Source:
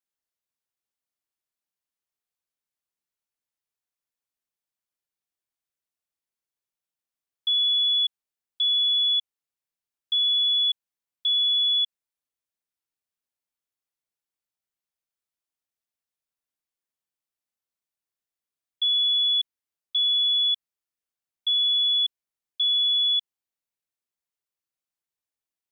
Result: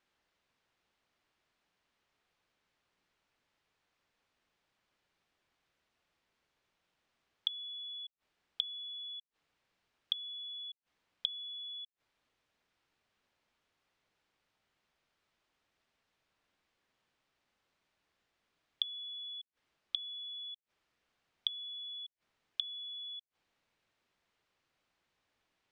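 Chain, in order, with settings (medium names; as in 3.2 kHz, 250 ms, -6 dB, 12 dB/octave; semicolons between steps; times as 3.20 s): low-pass 3.3 kHz 12 dB/octave; inverted gate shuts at -33 dBFS, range -36 dB; trim +17 dB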